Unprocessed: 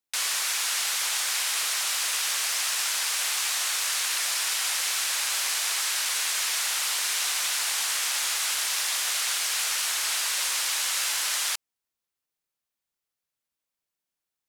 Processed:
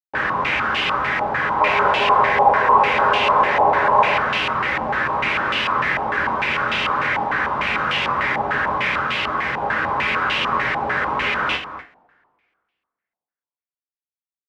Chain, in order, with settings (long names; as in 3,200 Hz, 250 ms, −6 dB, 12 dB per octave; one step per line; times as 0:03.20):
comparator with hysteresis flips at −25.5 dBFS
0:01.60–0:04.18: gain on a spectral selection 370–1,100 Hz +9 dB
0:08.98–0:09.62: bit-depth reduction 6 bits, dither none
high-pass filter 120 Hz 6 dB per octave
single-tap delay 238 ms −12 dB
coupled-rooms reverb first 0.27 s, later 1.9 s, from −27 dB, DRR −1.5 dB
low-pass on a step sequencer 6.7 Hz 830–2,800 Hz